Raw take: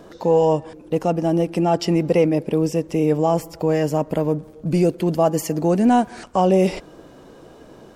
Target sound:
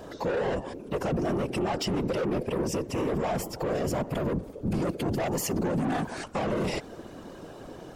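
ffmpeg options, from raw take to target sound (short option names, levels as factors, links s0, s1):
-af "asoftclip=type=tanh:threshold=0.0944,afftfilt=real='hypot(re,im)*cos(2*PI*random(0))':imag='hypot(re,im)*sin(2*PI*random(1))':win_size=512:overlap=0.75,alimiter=level_in=1.5:limit=0.0631:level=0:latency=1:release=28,volume=0.668,volume=2.24"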